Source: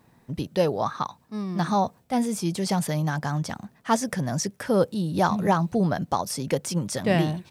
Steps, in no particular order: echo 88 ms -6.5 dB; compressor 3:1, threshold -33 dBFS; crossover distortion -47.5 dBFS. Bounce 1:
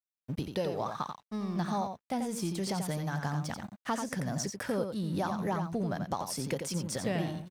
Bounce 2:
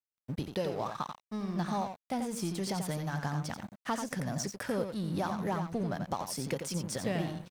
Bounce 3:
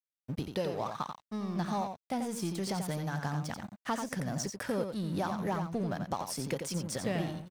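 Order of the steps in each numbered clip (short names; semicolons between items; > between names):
crossover distortion > compressor > echo; compressor > echo > crossover distortion; compressor > crossover distortion > echo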